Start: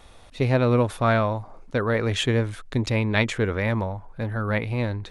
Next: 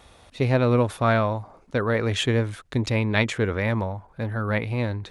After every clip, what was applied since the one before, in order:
high-pass filter 44 Hz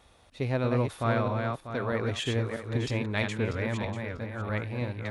feedback delay that plays each chunk backwards 321 ms, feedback 45%, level −4 dB
level −8 dB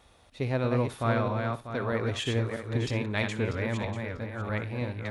flutter between parallel walls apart 10.5 metres, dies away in 0.22 s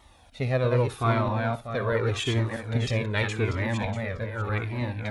flanger whose copies keep moving one way falling 0.84 Hz
level +7.5 dB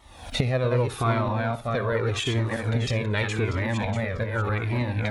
camcorder AGC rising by 61 dB per second

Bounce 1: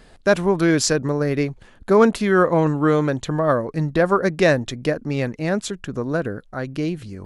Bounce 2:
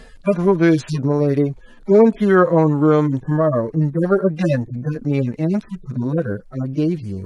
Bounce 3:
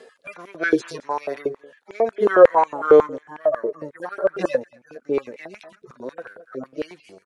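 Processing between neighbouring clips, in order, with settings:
harmonic-percussive split with one part muted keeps harmonic; in parallel at +1.5 dB: downward compressor, threshold −27 dBFS, peak gain reduction 16 dB; on the sum: level +1.5 dB
single-tap delay 221 ms −22 dB; rotating-speaker cabinet horn 0.65 Hz, later 5 Hz, at 0:04.95; high-pass on a step sequencer 11 Hz 410–2,400 Hz; level −2.5 dB

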